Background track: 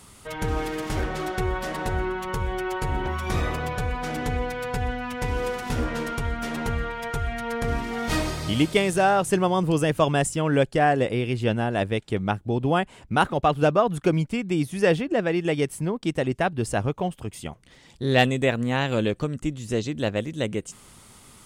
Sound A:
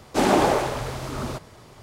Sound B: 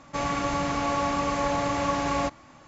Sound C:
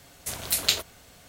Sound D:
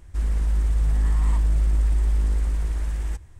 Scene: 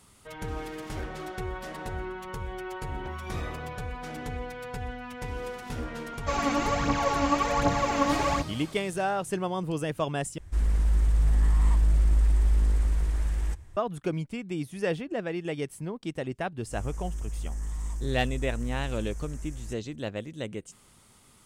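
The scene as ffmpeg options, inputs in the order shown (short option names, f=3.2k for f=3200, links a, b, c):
-filter_complex "[4:a]asplit=2[a][b];[0:a]volume=-8.5dB[c];[2:a]aphaser=in_gain=1:out_gain=1:delay=4:decay=0.63:speed=1.3:type=triangular[d];[b]highshelf=f=4.9k:t=q:w=3:g=8[e];[c]asplit=2[f][g];[f]atrim=end=10.384[h];[a]atrim=end=3.39,asetpts=PTS-STARTPTS,volume=-1.5dB[i];[g]atrim=start=13.766[j];[d]atrim=end=2.67,asetpts=PTS-STARTPTS,volume=-2dB,afade=t=in:d=0.004:c=hsin,afade=t=out:st=2.666:d=0.004:c=hsin,adelay=6130[k];[e]atrim=end=3.39,asetpts=PTS-STARTPTS,volume=-13dB,afade=t=in:d=0.004:c=hsin,afade=t=out:st=3.386:d=0.004:c=hsin,adelay=16570[l];[h][i]acrossfade=d=0.004:c1=hsin:c2=hsin[m];[m][j]acrossfade=d=0.004:c1=hsin:c2=hsin[n];[n][k][l]amix=inputs=3:normalize=0"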